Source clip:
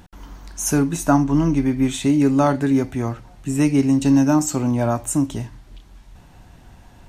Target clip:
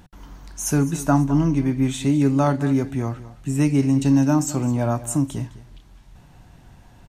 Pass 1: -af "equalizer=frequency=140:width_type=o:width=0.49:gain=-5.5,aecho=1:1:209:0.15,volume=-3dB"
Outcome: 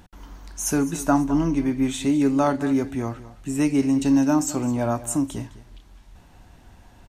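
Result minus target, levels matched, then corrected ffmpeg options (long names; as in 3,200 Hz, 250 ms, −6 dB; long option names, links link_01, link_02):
125 Hz band −7.0 dB
-af "equalizer=frequency=140:width_type=o:width=0.49:gain=5.5,aecho=1:1:209:0.15,volume=-3dB"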